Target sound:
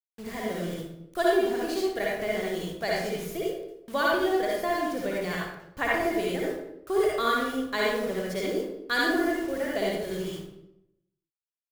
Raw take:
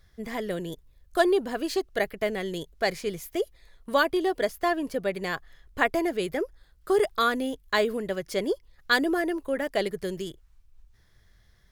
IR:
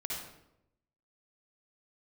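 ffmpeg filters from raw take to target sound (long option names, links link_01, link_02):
-filter_complex "[0:a]equalizer=frequency=91:width=1.7:gain=5.5,acrusher=bits=6:mix=0:aa=0.000001[link_01];[1:a]atrim=start_sample=2205[link_02];[link_01][link_02]afir=irnorm=-1:irlink=0,volume=-3dB"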